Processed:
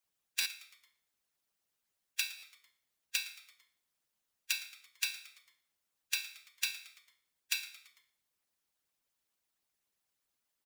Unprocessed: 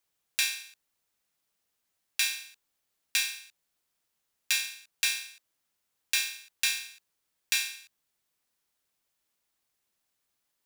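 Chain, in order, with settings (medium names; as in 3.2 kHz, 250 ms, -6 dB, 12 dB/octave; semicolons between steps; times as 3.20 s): harmonic-percussive split harmonic -18 dB; frequency-shifting echo 112 ms, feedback 51%, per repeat -130 Hz, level -18 dB; buffer glitch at 0.40/2.37 s, samples 512, times 4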